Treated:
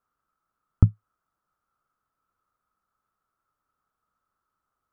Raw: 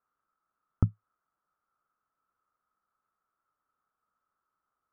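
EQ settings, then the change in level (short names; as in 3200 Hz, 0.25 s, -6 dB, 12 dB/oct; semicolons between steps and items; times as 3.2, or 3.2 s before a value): low shelf 170 Hz +9 dB; +2.0 dB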